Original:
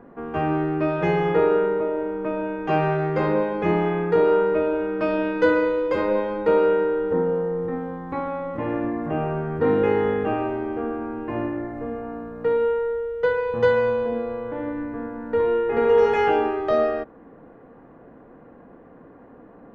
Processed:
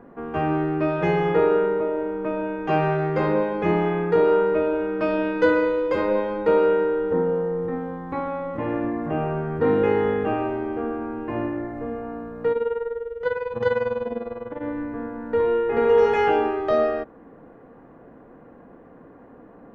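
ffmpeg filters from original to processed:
-filter_complex "[0:a]asettb=1/sr,asplit=3[a][b][c];[a]atrim=end=12.524[d];[b]atrim=start=12.52:end=14.63,asetpts=PTS-STARTPTS,afade=t=in:d=0.004:c=qsin,afade=t=out:st=2.106:d=0.004:c=qsin,tremolo=f=20:d=0.8[e];[c]atrim=start=14.626[f];[d][e]acrossfade=d=0.004:c1=hsin:c2=qsin[g];[g][f]acrossfade=d=0.004:c1=qsin:c2=hsin"

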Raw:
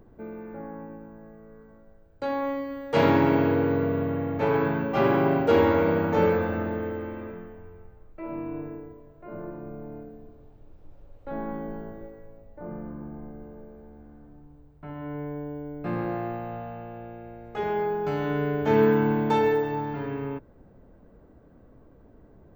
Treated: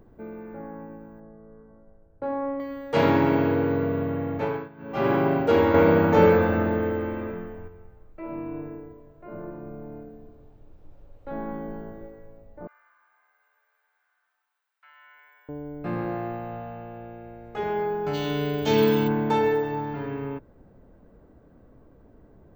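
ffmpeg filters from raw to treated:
-filter_complex "[0:a]asettb=1/sr,asplit=3[a][b][c];[a]atrim=end=1.204[d];[b]atrim=start=1.2:end=2.6,asetpts=PTS-STARTPTS,afade=t=in:d=0.004:c=qsin,afade=t=out:st=1.396:d=0.004:c=qsin,lowpass=1.2k[e];[c]atrim=start=2.596[f];[d][e]acrossfade=d=0.004:c1=hsin:c2=qsin[g];[g][f]acrossfade=d=0.004:c1=qsin:c2=hsin,asettb=1/sr,asplit=3[h][i][j];[h]atrim=end=5.744[k];[i]atrim=start=5.74:end=7.68,asetpts=PTS-STARTPTS,afade=t=in:d=0.004:c=qsin,afade=t=out:st=1.936:d=0.004:c=qsin,acontrast=34[l];[j]atrim=start=7.676[m];[k][l]acrossfade=d=0.004:c1=hsin:c2=qsin[n];[n][m]acrossfade=d=0.004:c1=qsin:c2=hsin,asettb=1/sr,asplit=3[o][p][q];[o]atrim=end=12.674[r];[p]atrim=start=12.67:end=15.49,asetpts=PTS-STARTPTS,afade=t=in:d=0.004:c=qsin,afade=t=out:st=2.816:d=0.004:c=qsin,highpass=f=1.4k:w=0.5412,highpass=f=1.4k:w=1.3066[s];[q]atrim=start=15.486[t];[r][s]acrossfade=d=0.004:c1=hsin:c2=qsin[u];[u][t]acrossfade=d=0.004:c1=qsin:c2=hsin,asplit=3[v][w][x];[v]afade=t=out:st=18.13:d=0.02[y];[w]highshelf=f=2.5k:t=q:w=1.5:g=13,afade=t=in:st=18.13:d=0.02,afade=t=out:st=19.07:d=0.02[z];[x]afade=t=in:st=19.07:d=0.02[aa];[y][z][aa]amix=inputs=3:normalize=0,asplit=3[ab][ac][ad];[ab]atrim=end=4.69,asetpts=PTS-STARTPTS,afade=t=out:st=4.35:d=0.34:silence=0.0841395[ae];[ac]atrim=start=4.69:end=4.77,asetpts=PTS-STARTPTS,volume=-21.5dB[af];[ad]atrim=start=4.77,asetpts=PTS-STARTPTS,afade=t=in:d=0.34:silence=0.0841395[ag];[ae][af][ag]concat=n=3:v=0:a=1"

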